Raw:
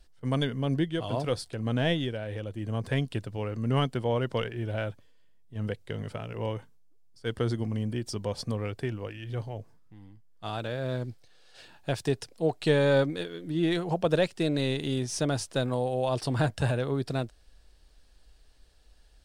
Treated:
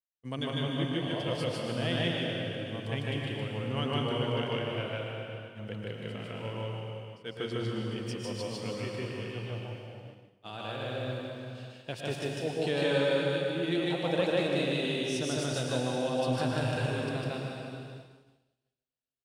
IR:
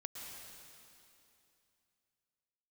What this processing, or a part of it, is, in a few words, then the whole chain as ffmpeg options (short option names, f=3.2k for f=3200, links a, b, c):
stadium PA: -filter_complex "[0:a]highpass=120,equalizer=f=2.8k:t=o:w=0.68:g=7,aecho=1:1:151.6|186.6:1|0.316[a];[1:a]atrim=start_sample=2205[b];[a][b]afir=irnorm=-1:irlink=0,agate=range=-33dB:threshold=-40dB:ratio=3:detection=peak,volume=-3.5dB"